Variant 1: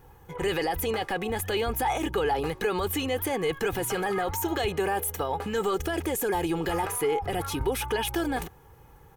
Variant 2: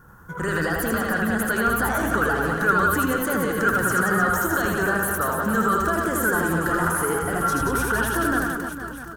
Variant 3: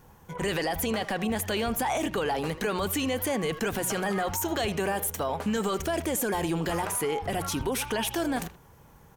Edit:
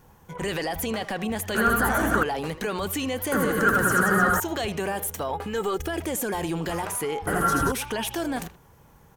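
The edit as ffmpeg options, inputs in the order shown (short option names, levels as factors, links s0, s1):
-filter_complex "[1:a]asplit=3[s0][s1][s2];[2:a]asplit=5[s3][s4][s5][s6][s7];[s3]atrim=end=1.552[s8];[s0]atrim=start=1.548:end=2.232[s9];[s4]atrim=start=2.228:end=3.322[s10];[s1]atrim=start=3.318:end=4.402[s11];[s5]atrim=start=4.398:end=5.312[s12];[0:a]atrim=start=5.308:end=6.022[s13];[s6]atrim=start=6.018:end=7.272[s14];[s2]atrim=start=7.268:end=7.722[s15];[s7]atrim=start=7.718[s16];[s8][s9]acrossfade=d=0.004:c1=hsin:c2=hsin[s17];[s17][s10]acrossfade=d=0.004:c1=hsin:c2=hsin[s18];[s18][s11]acrossfade=d=0.004:c1=hsin:c2=hsin[s19];[s19][s12]acrossfade=d=0.004:c1=hsin:c2=hsin[s20];[s20][s13]acrossfade=d=0.004:c1=hsin:c2=hsin[s21];[s21][s14]acrossfade=d=0.004:c1=hsin:c2=hsin[s22];[s22][s15]acrossfade=d=0.004:c1=hsin:c2=hsin[s23];[s23][s16]acrossfade=d=0.004:c1=hsin:c2=hsin"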